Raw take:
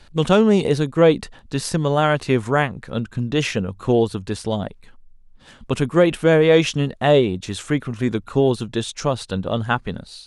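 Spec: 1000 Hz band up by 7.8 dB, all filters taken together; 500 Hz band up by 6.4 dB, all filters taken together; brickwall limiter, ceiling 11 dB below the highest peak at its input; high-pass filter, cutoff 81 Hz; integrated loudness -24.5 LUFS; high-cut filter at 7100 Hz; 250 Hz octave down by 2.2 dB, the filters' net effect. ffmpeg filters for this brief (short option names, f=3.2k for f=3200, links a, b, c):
-af "highpass=81,lowpass=7.1k,equalizer=f=250:t=o:g=-6.5,equalizer=f=500:t=o:g=7,equalizer=f=1k:t=o:g=8.5,volume=-4.5dB,alimiter=limit=-12dB:level=0:latency=1"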